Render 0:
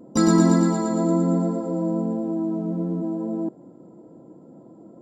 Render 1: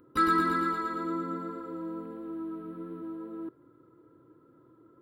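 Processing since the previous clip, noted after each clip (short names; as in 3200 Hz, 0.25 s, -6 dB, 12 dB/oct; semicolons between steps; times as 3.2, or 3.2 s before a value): EQ curve 120 Hz 0 dB, 200 Hz -21 dB, 290 Hz -6 dB, 420 Hz -4 dB, 730 Hz -20 dB, 1300 Hz +12 dB, 1900 Hz +7 dB, 3900 Hz +2 dB, 6700 Hz -27 dB, 9900 Hz +7 dB; gain -5.5 dB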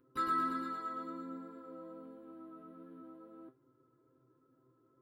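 resonator 130 Hz, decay 0.18 s, harmonics all, mix 90%; gain -3 dB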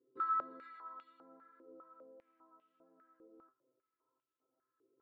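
stepped band-pass 5 Hz 420–2900 Hz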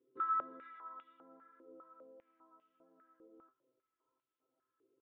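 downsampling 8000 Hz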